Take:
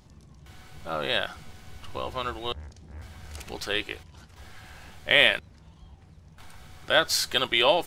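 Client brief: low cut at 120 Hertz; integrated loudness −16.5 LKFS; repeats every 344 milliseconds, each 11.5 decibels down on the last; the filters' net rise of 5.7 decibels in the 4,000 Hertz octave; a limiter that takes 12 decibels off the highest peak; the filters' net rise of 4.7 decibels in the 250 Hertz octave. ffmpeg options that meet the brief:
ffmpeg -i in.wav -af "highpass=120,equalizer=frequency=250:width_type=o:gain=7,equalizer=frequency=4000:width_type=o:gain=7.5,alimiter=limit=-12dB:level=0:latency=1,aecho=1:1:344|688|1032:0.266|0.0718|0.0194,volume=10.5dB" out.wav

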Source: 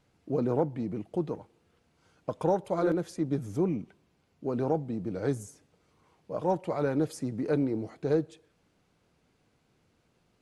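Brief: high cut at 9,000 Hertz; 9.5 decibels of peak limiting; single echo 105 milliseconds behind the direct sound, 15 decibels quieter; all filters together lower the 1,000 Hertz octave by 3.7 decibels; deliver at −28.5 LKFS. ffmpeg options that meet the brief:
ffmpeg -i in.wav -af "lowpass=9000,equalizer=frequency=1000:width_type=o:gain=-5,alimiter=level_in=0.5dB:limit=-24dB:level=0:latency=1,volume=-0.5dB,aecho=1:1:105:0.178,volume=6.5dB" out.wav

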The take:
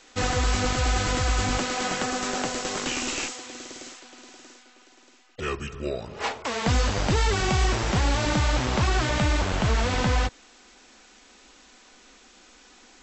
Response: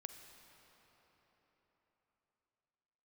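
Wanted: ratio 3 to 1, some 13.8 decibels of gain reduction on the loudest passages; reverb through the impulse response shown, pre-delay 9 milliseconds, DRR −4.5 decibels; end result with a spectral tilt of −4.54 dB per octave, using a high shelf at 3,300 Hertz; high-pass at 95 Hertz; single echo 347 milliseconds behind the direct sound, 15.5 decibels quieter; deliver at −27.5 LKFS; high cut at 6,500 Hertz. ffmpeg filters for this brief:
-filter_complex "[0:a]highpass=95,lowpass=6500,highshelf=frequency=3300:gain=-5.5,acompressor=threshold=-40dB:ratio=3,aecho=1:1:347:0.168,asplit=2[link_01][link_02];[1:a]atrim=start_sample=2205,adelay=9[link_03];[link_02][link_03]afir=irnorm=-1:irlink=0,volume=9dB[link_04];[link_01][link_04]amix=inputs=2:normalize=0,volume=6.5dB"

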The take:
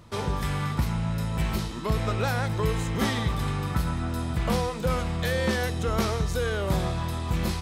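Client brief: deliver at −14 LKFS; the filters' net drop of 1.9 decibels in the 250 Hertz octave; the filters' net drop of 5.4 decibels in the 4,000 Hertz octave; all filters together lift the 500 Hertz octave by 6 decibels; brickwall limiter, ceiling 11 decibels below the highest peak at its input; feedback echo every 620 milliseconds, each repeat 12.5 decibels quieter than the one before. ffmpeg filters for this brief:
ffmpeg -i in.wav -af "equalizer=frequency=250:width_type=o:gain=-5,equalizer=frequency=500:width_type=o:gain=8,equalizer=frequency=4000:width_type=o:gain=-7,alimiter=limit=-22.5dB:level=0:latency=1,aecho=1:1:620|1240|1860:0.237|0.0569|0.0137,volume=17dB" out.wav

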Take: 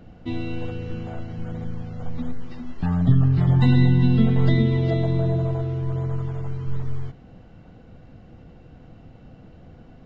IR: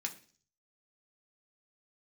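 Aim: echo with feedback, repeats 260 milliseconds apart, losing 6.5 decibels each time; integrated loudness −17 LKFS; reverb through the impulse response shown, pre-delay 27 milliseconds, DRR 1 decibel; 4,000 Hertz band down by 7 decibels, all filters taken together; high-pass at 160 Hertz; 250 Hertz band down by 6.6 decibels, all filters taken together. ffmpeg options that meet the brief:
-filter_complex "[0:a]highpass=160,equalizer=frequency=250:width_type=o:gain=-7,equalizer=frequency=4000:width_type=o:gain=-8,aecho=1:1:260|520|780|1040|1300|1560:0.473|0.222|0.105|0.0491|0.0231|0.0109,asplit=2[link_01][link_02];[1:a]atrim=start_sample=2205,adelay=27[link_03];[link_02][link_03]afir=irnorm=-1:irlink=0,volume=-1.5dB[link_04];[link_01][link_04]amix=inputs=2:normalize=0,volume=13.5dB"

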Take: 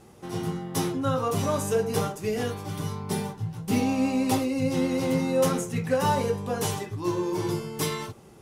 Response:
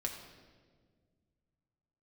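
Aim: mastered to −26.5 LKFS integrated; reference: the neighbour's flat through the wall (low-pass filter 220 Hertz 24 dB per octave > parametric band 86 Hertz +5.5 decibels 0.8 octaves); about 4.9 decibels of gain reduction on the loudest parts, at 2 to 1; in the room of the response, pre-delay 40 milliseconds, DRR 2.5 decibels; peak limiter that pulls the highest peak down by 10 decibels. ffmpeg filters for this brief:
-filter_complex "[0:a]acompressor=threshold=-28dB:ratio=2,alimiter=level_in=2.5dB:limit=-24dB:level=0:latency=1,volume=-2.5dB,asplit=2[link_01][link_02];[1:a]atrim=start_sample=2205,adelay=40[link_03];[link_02][link_03]afir=irnorm=-1:irlink=0,volume=-3.5dB[link_04];[link_01][link_04]amix=inputs=2:normalize=0,lowpass=frequency=220:width=0.5412,lowpass=frequency=220:width=1.3066,equalizer=frequency=86:width_type=o:width=0.8:gain=5.5,volume=10.5dB"

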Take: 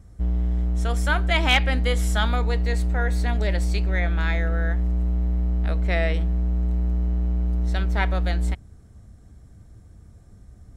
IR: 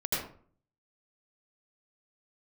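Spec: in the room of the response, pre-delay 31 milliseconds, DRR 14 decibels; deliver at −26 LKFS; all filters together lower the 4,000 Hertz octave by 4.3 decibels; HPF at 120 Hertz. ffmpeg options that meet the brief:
-filter_complex "[0:a]highpass=120,equalizer=frequency=4000:width_type=o:gain=-6,asplit=2[link_01][link_02];[1:a]atrim=start_sample=2205,adelay=31[link_03];[link_02][link_03]afir=irnorm=-1:irlink=0,volume=-21.5dB[link_04];[link_01][link_04]amix=inputs=2:normalize=0,volume=2.5dB"

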